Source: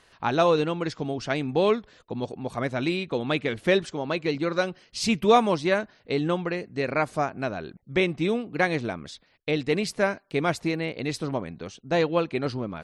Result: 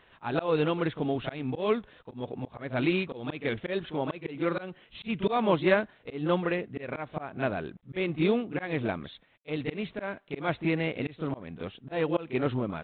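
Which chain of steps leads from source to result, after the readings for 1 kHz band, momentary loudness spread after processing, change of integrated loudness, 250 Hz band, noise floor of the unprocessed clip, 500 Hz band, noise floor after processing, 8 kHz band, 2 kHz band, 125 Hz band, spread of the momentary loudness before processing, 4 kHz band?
-6.5 dB, 11 LU, -4.5 dB, -3.0 dB, -61 dBFS, -5.0 dB, -61 dBFS, under -40 dB, -5.0 dB, -2.5 dB, 10 LU, -7.5 dB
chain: reverse echo 32 ms -11 dB; slow attack 231 ms; G.726 32 kbps 8 kHz

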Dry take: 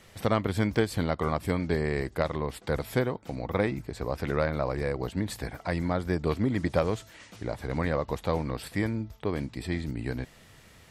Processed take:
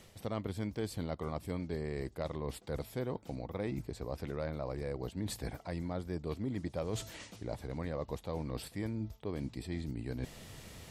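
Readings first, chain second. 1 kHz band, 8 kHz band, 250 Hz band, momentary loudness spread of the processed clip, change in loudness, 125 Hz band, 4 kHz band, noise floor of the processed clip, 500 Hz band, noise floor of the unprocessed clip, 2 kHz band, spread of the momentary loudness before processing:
-12.5 dB, -4.0 dB, -9.0 dB, 4 LU, -9.5 dB, -8.5 dB, -7.5 dB, -57 dBFS, -10.0 dB, -55 dBFS, -14.5 dB, 8 LU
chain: peaking EQ 1.6 kHz -6.5 dB 1.4 oct; reverse; compression 4:1, threshold -42 dBFS, peak gain reduction 18.5 dB; reverse; trim +5 dB

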